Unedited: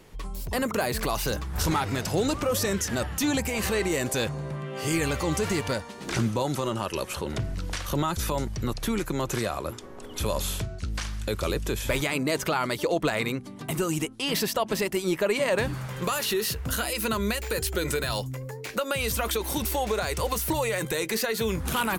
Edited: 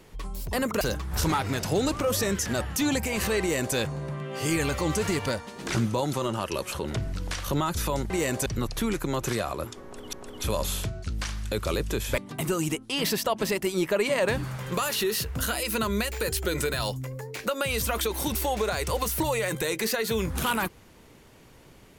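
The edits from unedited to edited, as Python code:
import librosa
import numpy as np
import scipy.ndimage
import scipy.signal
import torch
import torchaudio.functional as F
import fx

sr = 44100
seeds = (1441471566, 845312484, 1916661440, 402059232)

y = fx.edit(x, sr, fx.cut(start_s=0.81, length_s=0.42),
    fx.duplicate(start_s=3.82, length_s=0.36, to_s=8.52),
    fx.repeat(start_s=9.89, length_s=0.3, count=2),
    fx.cut(start_s=11.94, length_s=1.54), tone=tone)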